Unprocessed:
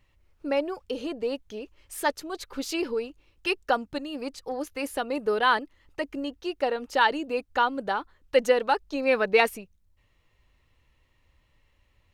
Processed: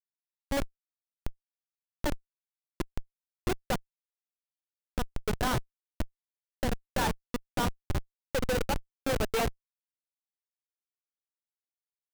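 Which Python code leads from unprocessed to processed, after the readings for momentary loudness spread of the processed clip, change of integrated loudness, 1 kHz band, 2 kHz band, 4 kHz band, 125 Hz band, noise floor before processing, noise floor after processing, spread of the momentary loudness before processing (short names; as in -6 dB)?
11 LU, -6.5 dB, -9.5 dB, -10.0 dB, -6.5 dB, n/a, -67 dBFS, under -85 dBFS, 13 LU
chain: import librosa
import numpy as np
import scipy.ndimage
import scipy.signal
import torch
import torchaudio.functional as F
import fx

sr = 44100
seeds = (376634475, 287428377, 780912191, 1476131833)

y = fx.room_flutter(x, sr, wall_m=9.6, rt60_s=0.37)
y = fx.schmitt(y, sr, flips_db=-19.5)
y = F.gain(torch.from_numpy(y), 1.5).numpy()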